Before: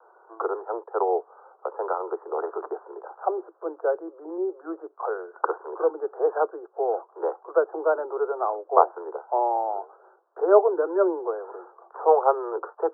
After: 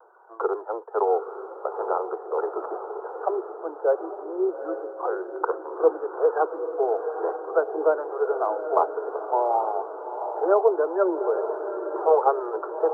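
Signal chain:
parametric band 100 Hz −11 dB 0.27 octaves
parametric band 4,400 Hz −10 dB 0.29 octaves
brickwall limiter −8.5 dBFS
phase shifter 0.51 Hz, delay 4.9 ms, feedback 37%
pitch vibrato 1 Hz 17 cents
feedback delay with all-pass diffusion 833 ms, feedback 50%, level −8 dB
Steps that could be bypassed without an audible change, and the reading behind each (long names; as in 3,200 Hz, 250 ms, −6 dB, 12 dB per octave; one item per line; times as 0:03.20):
parametric band 100 Hz: nothing at its input below 290 Hz
parametric band 4,400 Hz: nothing at its input above 1,600 Hz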